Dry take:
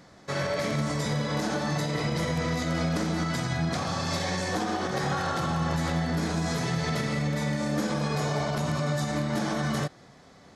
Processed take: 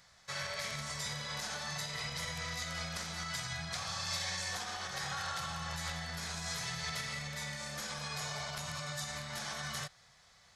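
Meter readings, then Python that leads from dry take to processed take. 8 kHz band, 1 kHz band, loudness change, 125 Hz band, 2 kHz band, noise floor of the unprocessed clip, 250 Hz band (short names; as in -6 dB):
-1.5 dB, -11.0 dB, -9.5 dB, -16.0 dB, -6.0 dB, -53 dBFS, -21.0 dB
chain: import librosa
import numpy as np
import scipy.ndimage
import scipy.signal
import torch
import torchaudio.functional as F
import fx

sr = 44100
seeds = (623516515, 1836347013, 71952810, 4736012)

y = fx.tone_stack(x, sr, knobs='10-0-10')
y = y * librosa.db_to_amplitude(-1.0)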